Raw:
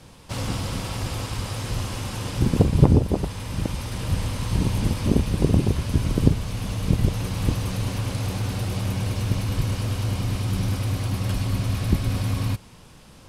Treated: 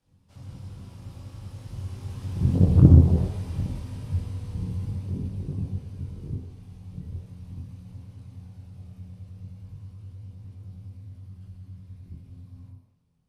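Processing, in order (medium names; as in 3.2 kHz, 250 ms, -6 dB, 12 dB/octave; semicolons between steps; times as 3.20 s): Doppler pass-by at 3.06 s, 8 m/s, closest 4.2 m; chorus voices 2, 0.19 Hz, delay 22 ms, depth 1.8 ms; on a send at -1.5 dB: reverberation RT60 1.0 s, pre-delay 58 ms; on the sum: loudspeaker Doppler distortion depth 0.92 ms; trim -9.5 dB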